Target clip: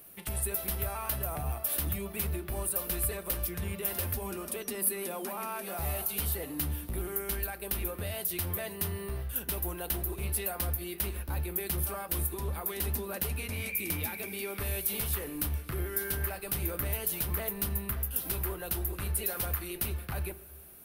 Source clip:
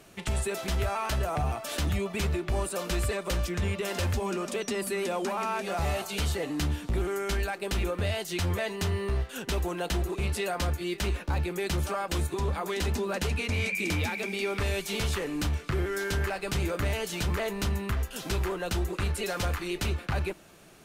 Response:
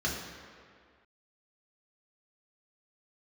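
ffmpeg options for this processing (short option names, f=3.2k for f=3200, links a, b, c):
-filter_complex "[0:a]asplit=2[a][b];[1:a]atrim=start_sample=2205,adelay=13[c];[b][c]afir=irnorm=-1:irlink=0,volume=-22dB[d];[a][d]amix=inputs=2:normalize=0,aexciter=amount=8.3:drive=9:freq=10k,volume=-7.5dB"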